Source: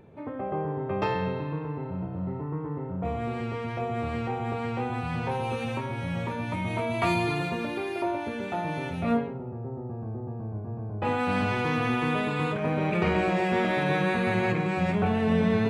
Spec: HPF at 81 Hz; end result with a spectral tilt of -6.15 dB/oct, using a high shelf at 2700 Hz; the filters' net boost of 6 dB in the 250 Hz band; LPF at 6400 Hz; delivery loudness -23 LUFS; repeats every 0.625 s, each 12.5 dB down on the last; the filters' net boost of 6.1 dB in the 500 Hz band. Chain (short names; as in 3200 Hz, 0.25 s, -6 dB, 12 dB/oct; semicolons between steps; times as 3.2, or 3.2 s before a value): HPF 81 Hz; LPF 6400 Hz; bell 250 Hz +6.5 dB; bell 500 Hz +5.5 dB; high shelf 2700 Hz +3 dB; feedback echo 0.625 s, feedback 24%, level -12.5 dB; gain +1 dB